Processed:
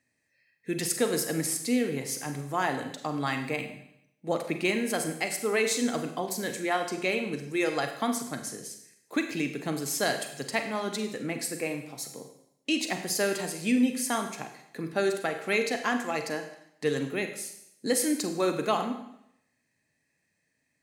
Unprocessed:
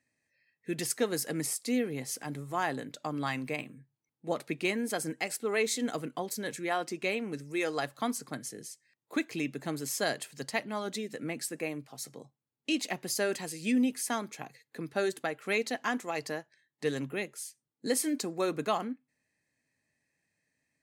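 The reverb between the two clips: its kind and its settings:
four-comb reverb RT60 0.77 s, combs from 33 ms, DRR 6 dB
level +3 dB

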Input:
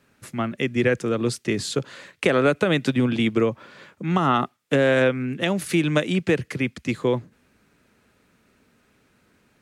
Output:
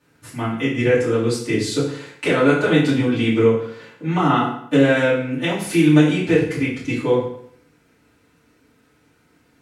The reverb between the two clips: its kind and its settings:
feedback delay network reverb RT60 0.65 s, low-frequency decay 1×, high-frequency decay 0.85×, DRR −10 dB
level −7.5 dB

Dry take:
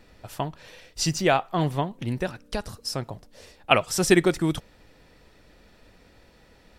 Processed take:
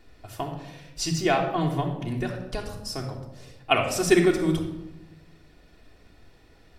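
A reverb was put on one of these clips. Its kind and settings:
rectangular room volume 3,500 cubic metres, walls furnished, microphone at 3.3 metres
level −4.5 dB

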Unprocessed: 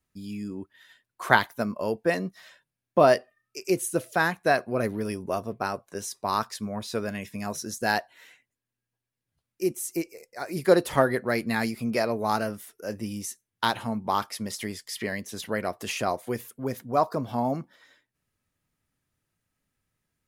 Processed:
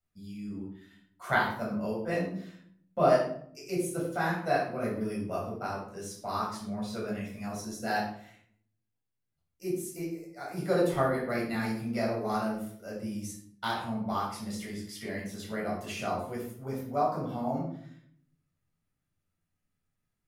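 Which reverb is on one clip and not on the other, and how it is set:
rectangular room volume 950 cubic metres, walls furnished, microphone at 7 metres
level −14.5 dB

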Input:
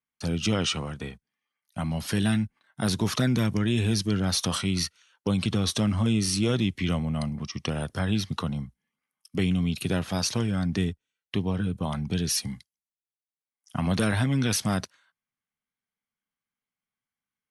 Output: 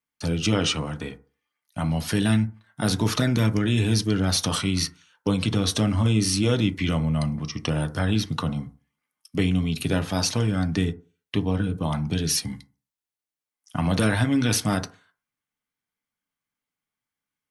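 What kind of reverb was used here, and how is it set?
feedback delay network reverb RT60 0.37 s, low-frequency decay 0.9×, high-frequency decay 0.35×, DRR 7.5 dB
level +2.5 dB

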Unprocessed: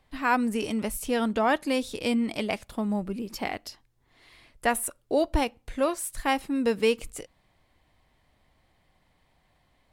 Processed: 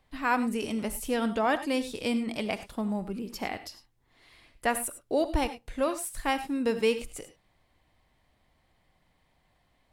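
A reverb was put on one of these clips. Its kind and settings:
reverb whose tail is shaped and stops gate 120 ms rising, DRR 11.5 dB
level −2.5 dB

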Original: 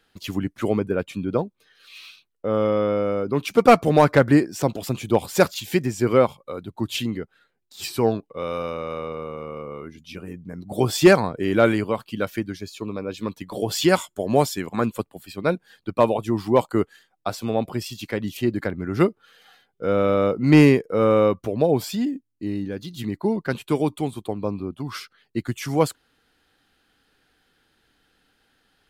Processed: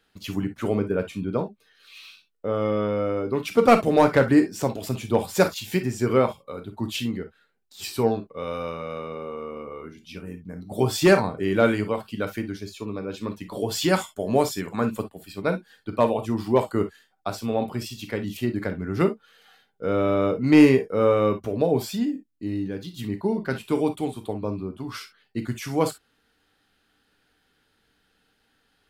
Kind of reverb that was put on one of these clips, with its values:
reverb whose tail is shaped and stops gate 80 ms flat, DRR 6.5 dB
level −3 dB

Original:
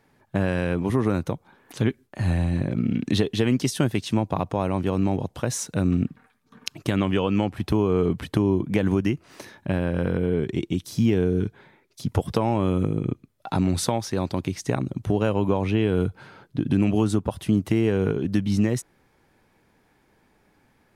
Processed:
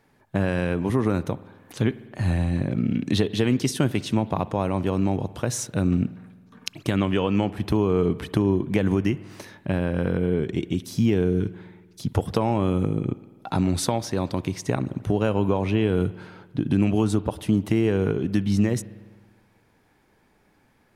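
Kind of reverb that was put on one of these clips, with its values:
spring reverb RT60 1.5 s, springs 50 ms, chirp 25 ms, DRR 17 dB

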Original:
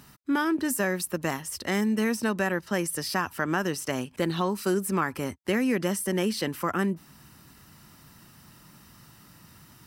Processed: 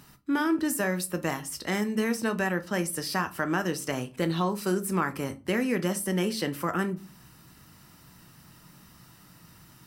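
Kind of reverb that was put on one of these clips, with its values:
rectangular room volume 170 cubic metres, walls furnished, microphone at 0.57 metres
level −1.5 dB

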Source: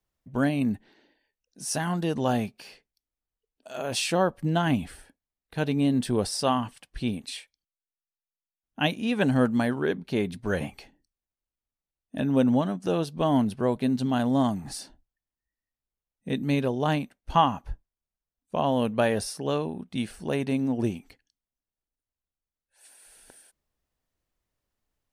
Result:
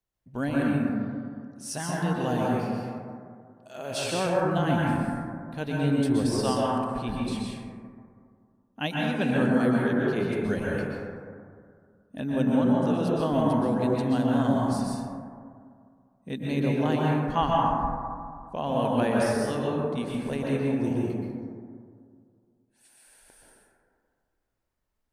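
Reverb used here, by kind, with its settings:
dense smooth reverb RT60 2.2 s, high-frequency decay 0.25×, pre-delay 110 ms, DRR −4.5 dB
level −5.5 dB

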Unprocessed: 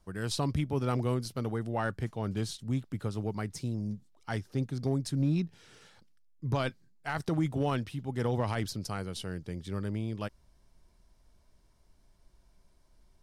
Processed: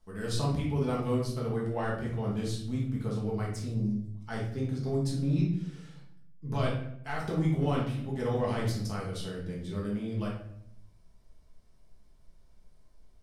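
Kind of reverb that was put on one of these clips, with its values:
rectangular room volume 150 cubic metres, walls mixed, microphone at 1.5 metres
level −6 dB

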